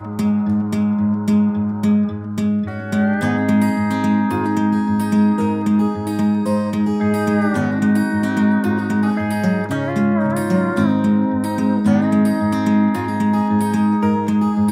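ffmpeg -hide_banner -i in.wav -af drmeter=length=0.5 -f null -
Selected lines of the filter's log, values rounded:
Channel 1: DR: 7.6
Overall DR: 7.6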